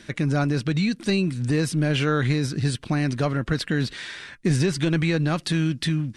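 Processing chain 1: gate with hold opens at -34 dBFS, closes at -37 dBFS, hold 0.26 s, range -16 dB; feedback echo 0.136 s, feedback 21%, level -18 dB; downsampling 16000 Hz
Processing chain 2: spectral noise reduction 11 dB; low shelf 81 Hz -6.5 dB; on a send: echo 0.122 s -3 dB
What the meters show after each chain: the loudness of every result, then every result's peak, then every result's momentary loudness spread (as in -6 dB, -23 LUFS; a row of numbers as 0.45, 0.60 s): -24.0, -26.0 LUFS; -10.5, -11.0 dBFS; 4, 7 LU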